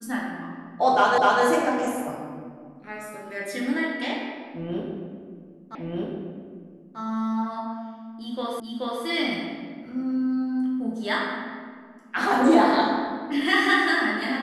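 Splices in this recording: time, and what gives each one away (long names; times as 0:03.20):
0:01.18: the same again, the last 0.25 s
0:05.75: the same again, the last 1.24 s
0:08.60: the same again, the last 0.43 s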